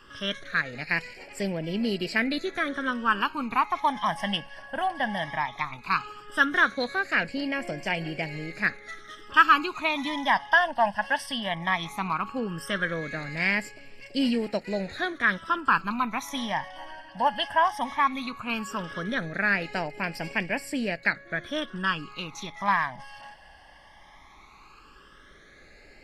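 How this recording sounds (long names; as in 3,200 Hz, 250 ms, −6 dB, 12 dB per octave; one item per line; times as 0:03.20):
phaser sweep stages 12, 0.16 Hz, lowest notch 400–1,200 Hz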